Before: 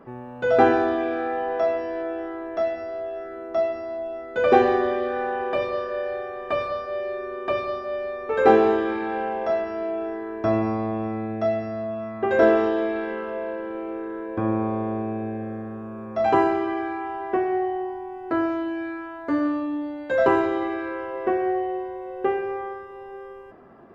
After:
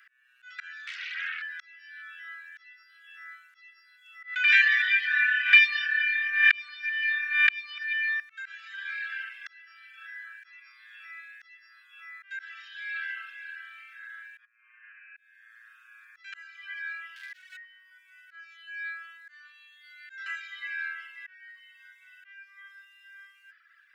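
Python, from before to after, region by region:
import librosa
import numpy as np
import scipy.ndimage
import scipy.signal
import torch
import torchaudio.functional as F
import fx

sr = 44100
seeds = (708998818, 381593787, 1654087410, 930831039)

y = fx.chain(x, sr, fx.bandpass_edges(low_hz=640.0, high_hz=4500.0),
    fx.doppler_dist(depth_ms=0.64), at=(0.87, 1.42))
y = fx.chain(y, sr, fx.reverse_delay(ms=148, wet_db=-13.0),
    fx.peak_eq(hz=2300.0, db=14.5, octaves=1.4),
    fx.pre_swell(db_per_s=58.0), at=(4.23, 8.2))
y = fx.chain(y, sr, fx.level_steps(step_db=15),
    fx.brickwall_bandpass(low_hz=410.0, high_hz=3100.0), at=(14.45, 15.17))
y = fx.chain(y, sr, fx.high_shelf(hz=5000.0, db=4.0),
    fx.hum_notches(base_hz=50, count=8),
    fx.clip_hard(threshold_db=-26.0), at=(17.16, 17.57))
y = fx.dereverb_blind(y, sr, rt60_s=0.98)
y = fx.auto_swell(y, sr, attack_ms=587.0)
y = scipy.signal.sosfilt(scipy.signal.butter(12, 1500.0, 'highpass', fs=sr, output='sos'), y)
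y = y * 10.0 ** (8.0 / 20.0)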